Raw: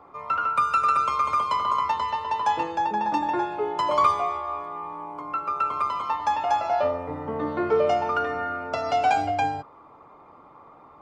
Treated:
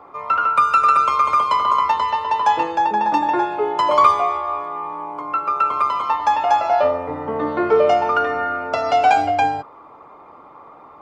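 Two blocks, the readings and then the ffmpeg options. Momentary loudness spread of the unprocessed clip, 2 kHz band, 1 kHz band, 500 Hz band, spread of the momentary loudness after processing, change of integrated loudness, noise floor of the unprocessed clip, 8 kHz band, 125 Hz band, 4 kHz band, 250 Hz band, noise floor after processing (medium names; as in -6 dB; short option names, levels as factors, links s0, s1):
10 LU, +7.0 dB, +7.0 dB, +6.5 dB, 10 LU, +7.0 dB, -51 dBFS, no reading, +1.5 dB, +6.0 dB, +5.0 dB, -44 dBFS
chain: -af "bass=f=250:g=-6,treble=f=4000:g=-3,volume=2.24"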